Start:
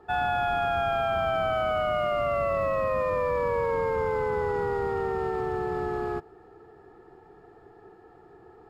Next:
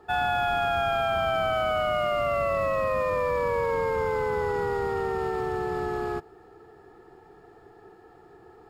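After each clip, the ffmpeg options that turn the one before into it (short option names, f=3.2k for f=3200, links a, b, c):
-af "highshelf=f=2.9k:g=8"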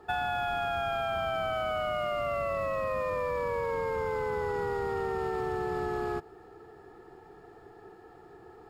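-af "acompressor=threshold=-28dB:ratio=6"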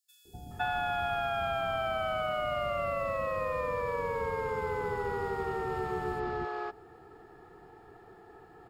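-filter_complex "[0:a]acrossover=split=410|5600[a][b][c];[a]adelay=250[d];[b]adelay=510[e];[d][e][c]amix=inputs=3:normalize=0"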